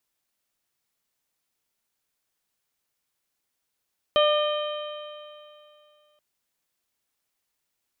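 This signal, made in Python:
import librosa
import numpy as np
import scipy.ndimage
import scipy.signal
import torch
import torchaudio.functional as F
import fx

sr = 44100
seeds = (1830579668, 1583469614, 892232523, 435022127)

y = fx.additive_stiff(sr, length_s=2.03, hz=597.0, level_db=-17.0, upper_db=(-6.5, -18.5, -16.0, -6.0, -19.5), decay_s=2.57, stiffness=0.0035)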